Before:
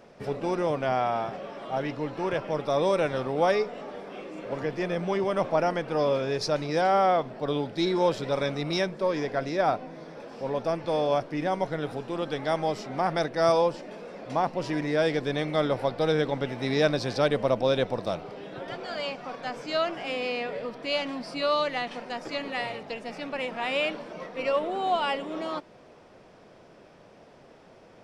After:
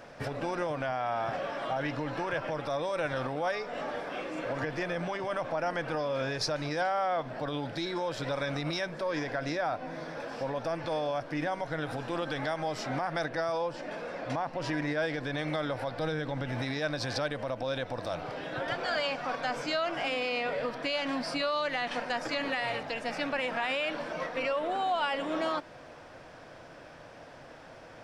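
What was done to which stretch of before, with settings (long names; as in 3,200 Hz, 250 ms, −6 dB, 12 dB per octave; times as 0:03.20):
0:13.25–0:15.37: high-shelf EQ 5,800 Hz −5.5 dB
0:15.99–0:16.62: low-shelf EQ 230 Hz +7 dB
0:19.36–0:20.58: notch filter 1,700 Hz
whole clip: downward compressor, threshold −29 dBFS; brickwall limiter −26.5 dBFS; thirty-one-band graphic EQ 200 Hz −11 dB, 400 Hz −10 dB, 1,600 Hz +6 dB; level +5 dB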